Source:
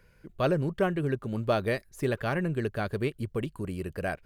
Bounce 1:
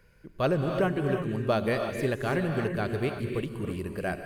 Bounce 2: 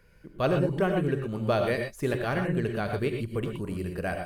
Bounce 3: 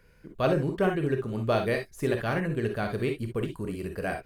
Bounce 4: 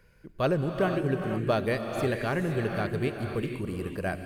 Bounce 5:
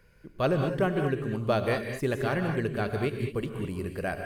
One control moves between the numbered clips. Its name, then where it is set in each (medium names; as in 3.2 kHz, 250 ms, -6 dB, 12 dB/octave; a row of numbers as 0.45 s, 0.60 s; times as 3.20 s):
gated-style reverb, gate: 360 ms, 140 ms, 80 ms, 530 ms, 240 ms